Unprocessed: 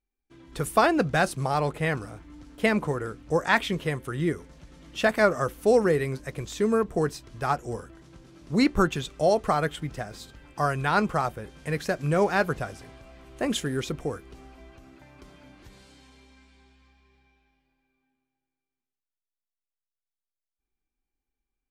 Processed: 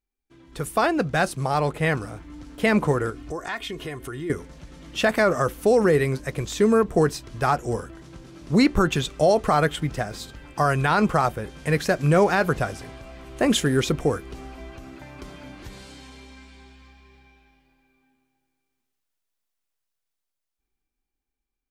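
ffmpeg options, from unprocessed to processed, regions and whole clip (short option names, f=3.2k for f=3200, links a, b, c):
-filter_complex "[0:a]asettb=1/sr,asplit=3[a][b][c];[a]atrim=end=3.104[d];[b]atrim=start=3.1:end=4.3,asetpts=PTS-STARTPTS,afade=t=in:d=0.004:c=qsin,afade=t=out:st=1.196:d=0.004:c=qsin,aecho=1:1:2.8:0.54,atrim=end_sample=52920,acompressor=threshold=-39dB:ratio=3:attack=3.2:release=140:knee=1:detection=peak[e];[c]atrim=start=4.296[f];[d][e]acrossfade=d=0.004:c1=hsin:c2=qsin[g];[g][f]acrossfade=d=0.004:c1=qsin:c2=hsin,dynaudnorm=f=190:g=17:m=10.5dB,alimiter=level_in=8dB:limit=-1dB:release=50:level=0:latency=1,volume=-8.5dB"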